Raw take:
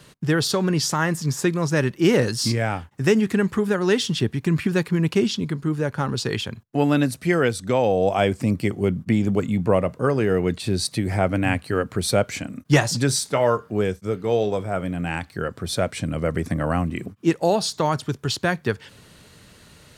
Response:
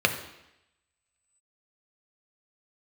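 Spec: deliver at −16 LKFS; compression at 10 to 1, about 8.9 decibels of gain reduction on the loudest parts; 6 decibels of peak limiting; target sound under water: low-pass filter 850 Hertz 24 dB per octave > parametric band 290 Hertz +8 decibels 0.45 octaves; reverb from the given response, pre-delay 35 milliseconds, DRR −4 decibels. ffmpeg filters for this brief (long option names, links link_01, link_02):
-filter_complex "[0:a]acompressor=threshold=-21dB:ratio=10,alimiter=limit=-17dB:level=0:latency=1,asplit=2[link_01][link_02];[1:a]atrim=start_sample=2205,adelay=35[link_03];[link_02][link_03]afir=irnorm=-1:irlink=0,volume=-11dB[link_04];[link_01][link_04]amix=inputs=2:normalize=0,lowpass=frequency=850:width=0.5412,lowpass=frequency=850:width=1.3066,equalizer=frequency=290:width_type=o:width=0.45:gain=8,volume=6dB"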